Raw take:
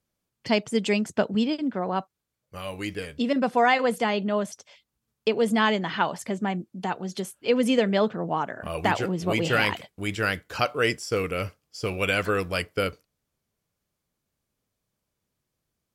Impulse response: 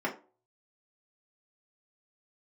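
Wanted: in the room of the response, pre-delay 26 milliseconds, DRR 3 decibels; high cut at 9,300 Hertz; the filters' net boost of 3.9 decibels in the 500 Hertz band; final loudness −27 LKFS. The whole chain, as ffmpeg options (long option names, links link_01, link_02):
-filter_complex "[0:a]lowpass=9300,equalizer=frequency=500:width_type=o:gain=4.5,asplit=2[link_01][link_02];[1:a]atrim=start_sample=2205,adelay=26[link_03];[link_02][link_03]afir=irnorm=-1:irlink=0,volume=-11dB[link_04];[link_01][link_04]amix=inputs=2:normalize=0,volume=-5dB"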